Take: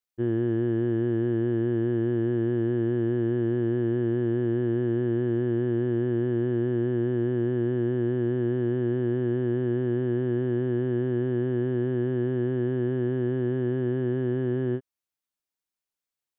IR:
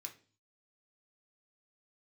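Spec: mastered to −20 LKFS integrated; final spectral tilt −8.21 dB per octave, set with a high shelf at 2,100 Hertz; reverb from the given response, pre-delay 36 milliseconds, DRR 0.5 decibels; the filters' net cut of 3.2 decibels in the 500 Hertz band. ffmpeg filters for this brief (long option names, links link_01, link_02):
-filter_complex "[0:a]equalizer=frequency=500:width_type=o:gain=-5.5,highshelf=frequency=2100:gain=-4.5,asplit=2[link_01][link_02];[1:a]atrim=start_sample=2205,adelay=36[link_03];[link_02][link_03]afir=irnorm=-1:irlink=0,volume=4dB[link_04];[link_01][link_04]amix=inputs=2:normalize=0,volume=5.5dB"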